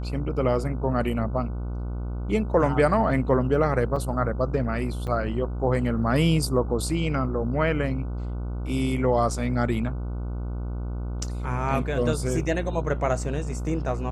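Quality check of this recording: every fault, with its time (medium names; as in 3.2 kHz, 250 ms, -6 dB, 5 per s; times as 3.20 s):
buzz 60 Hz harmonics 25 -30 dBFS
3.96 s: dropout 4.1 ms
5.07–5.08 s: dropout 7.2 ms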